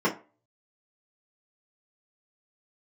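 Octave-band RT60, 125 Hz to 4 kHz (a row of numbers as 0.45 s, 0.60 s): 0.30 s, 0.30 s, 0.35 s, 0.35 s, 0.30 s, 0.20 s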